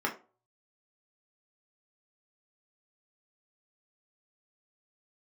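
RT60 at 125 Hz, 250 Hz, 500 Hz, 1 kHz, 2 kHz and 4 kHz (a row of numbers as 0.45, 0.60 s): 0.65, 0.35, 0.40, 0.35, 0.25, 0.20 s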